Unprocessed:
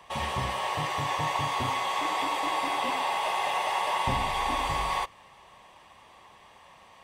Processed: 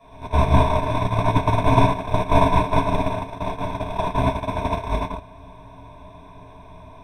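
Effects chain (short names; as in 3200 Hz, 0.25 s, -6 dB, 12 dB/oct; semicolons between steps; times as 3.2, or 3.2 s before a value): per-bin compression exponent 0.2; de-hum 58.71 Hz, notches 39; soft clip -14 dBFS, distortion -23 dB; ripple EQ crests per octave 1.6, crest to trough 17 dB; shoebox room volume 330 m³, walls mixed, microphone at 6 m; gate -3 dBFS, range -28 dB; tilt shelf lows +7 dB, about 1400 Hz; gain -9.5 dB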